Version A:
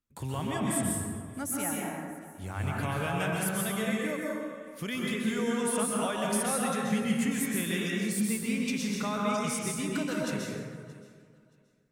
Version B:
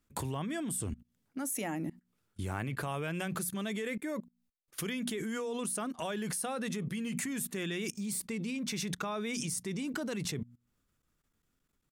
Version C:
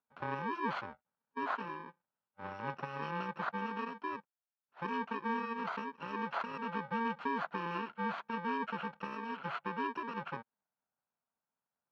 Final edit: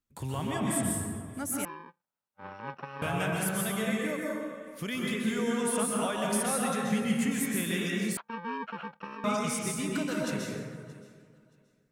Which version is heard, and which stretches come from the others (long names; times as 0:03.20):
A
0:01.65–0:03.02: punch in from C
0:08.17–0:09.24: punch in from C
not used: B